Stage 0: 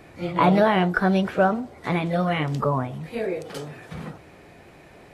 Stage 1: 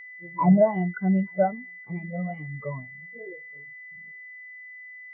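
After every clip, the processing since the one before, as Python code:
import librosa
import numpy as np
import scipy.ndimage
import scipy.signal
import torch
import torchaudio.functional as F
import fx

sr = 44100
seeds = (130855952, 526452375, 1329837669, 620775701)

y = x + 10.0 ** (-16.5 / 20.0) * np.pad(x, (int(874 * sr / 1000.0), 0))[:len(x)]
y = y + 10.0 ** (-27.0 / 20.0) * np.sin(2.0 * np.pi * 2000.0 * np.arange(len(y)) / sr)
y = fx.spectral_expand(y, sr, expansion=2.5)
y = y * librosa.db_to_amplitude(-3.5)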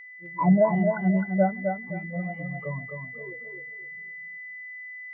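y = fx.echo_feedback(x, sr, ms=260, feedback_pct=27, wet_db=-5.0)
y = y * librosa.db_to_amplitude(-1.5)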